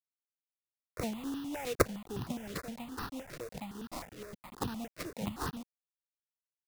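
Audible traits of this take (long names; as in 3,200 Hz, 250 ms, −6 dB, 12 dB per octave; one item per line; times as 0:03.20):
aliases and images of a low sample rate 3,200 Hz, jitter 20%
tremolo saw down 2.4 Hz, depth 50%
a quantiser's noise floor 8 bits, dither none
notches that jump at a steady rate 9.7 Hz 230–2,200 Hz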